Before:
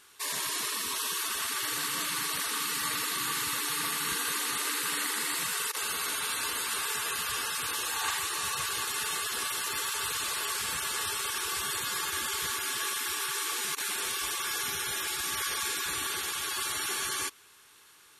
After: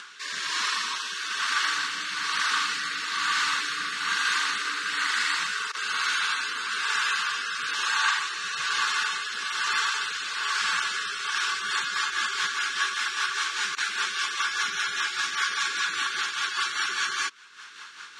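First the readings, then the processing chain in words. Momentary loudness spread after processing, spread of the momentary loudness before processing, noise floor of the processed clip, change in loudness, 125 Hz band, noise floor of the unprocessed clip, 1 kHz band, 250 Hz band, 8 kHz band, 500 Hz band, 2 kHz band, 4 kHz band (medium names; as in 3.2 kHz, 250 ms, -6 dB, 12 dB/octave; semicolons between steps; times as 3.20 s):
5 LU, 1 LU, -44 dBFS, +4.0 dB, no reading, -57 dBFS, +6.5 dB, -5.0 dB, -3.5 dB, -6.5 dB, +9.0 dB, +4.5 dB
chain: resonant low shelf 770 Hz -9.5 dB, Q 1.5; upward compressor, threshold -38 dBFS; rotary cabinet horn 1.1 Hz, later 5 Hz, at 11.13 s; cabinet simulation 180–6300 Hz, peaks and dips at 200 Hz +5 dB, 770 Hz -5 dB, 1.5 kHz +6 dB; trim +7 dB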